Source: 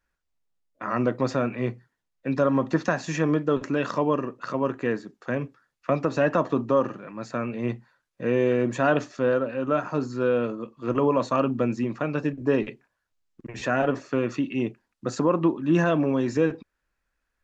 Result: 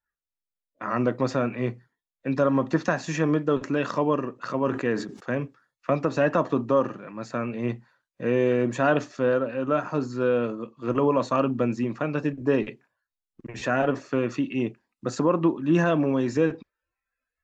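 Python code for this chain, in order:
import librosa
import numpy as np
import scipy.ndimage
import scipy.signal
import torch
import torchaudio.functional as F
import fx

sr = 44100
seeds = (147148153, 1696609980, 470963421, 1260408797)

y = fx.noise_reduce_blind(x, sr, reduce_db=16)
y = fx.sustainer(y, sr, db_per_s=84.0, at=(4.34, 5.41))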